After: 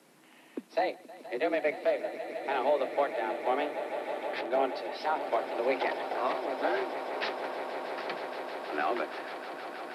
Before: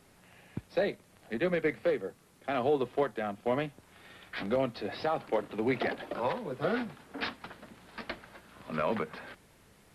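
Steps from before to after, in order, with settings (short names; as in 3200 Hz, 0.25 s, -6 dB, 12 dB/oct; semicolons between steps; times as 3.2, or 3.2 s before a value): swelling echo 0.158 s, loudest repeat 8, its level -15 dB; frequency shift +140 Hz; 4.41–5.21 three-band expander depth 70%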